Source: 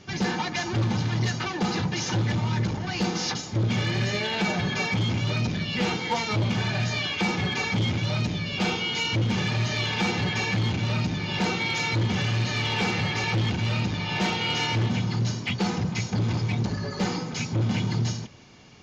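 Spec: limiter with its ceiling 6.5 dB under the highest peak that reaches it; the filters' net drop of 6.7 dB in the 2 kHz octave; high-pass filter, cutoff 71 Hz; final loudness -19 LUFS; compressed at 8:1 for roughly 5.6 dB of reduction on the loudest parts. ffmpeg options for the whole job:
-af "highpass=71,equalizer=f=2000:t=o:g=-8.5,acompressor=threshold=0.0447:ratio=8,volume=5.31,alimiter=limit=0.282:level=0:latency=1"

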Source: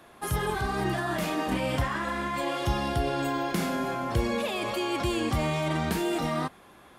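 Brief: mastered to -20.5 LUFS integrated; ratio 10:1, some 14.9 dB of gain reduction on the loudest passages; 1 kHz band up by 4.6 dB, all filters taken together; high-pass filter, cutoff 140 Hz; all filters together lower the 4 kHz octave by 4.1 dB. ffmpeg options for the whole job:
-af "highpass=140,equalizer=f=1000:t=o:g=6,equalizer=f=4000:t=o:g=-6,acompressor=threshold=0.0112:ratio=10,volume=11.9"

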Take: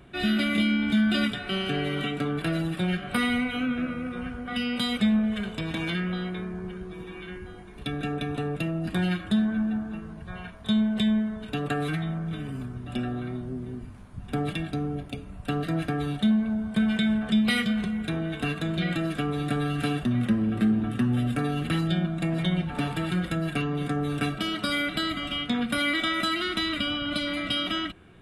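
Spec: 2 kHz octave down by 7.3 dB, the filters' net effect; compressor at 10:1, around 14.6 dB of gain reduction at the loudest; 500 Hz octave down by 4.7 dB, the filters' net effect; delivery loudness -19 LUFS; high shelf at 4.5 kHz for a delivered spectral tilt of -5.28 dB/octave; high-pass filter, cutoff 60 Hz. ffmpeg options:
-af "highpass=60,equalizer=f=500:t=o:g=-6,equalizer=f=2000:t=o:g=-8,highshelf=f=4500:g=-7,acompressor=threshold=0.0178:ratio=10,volume=10"

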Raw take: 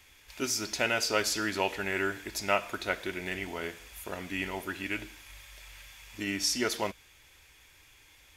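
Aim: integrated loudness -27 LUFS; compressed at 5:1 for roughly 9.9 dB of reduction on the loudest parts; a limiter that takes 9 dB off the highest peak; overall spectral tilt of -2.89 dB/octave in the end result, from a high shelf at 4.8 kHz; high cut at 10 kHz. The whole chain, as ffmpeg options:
-af "lowpass=10000,highshelf=f=4800:g=-4.5,acompressor=threshold=0.02:ratio=5,volume=5.01,alimiter=limit=0.188:level=0:latency=1"

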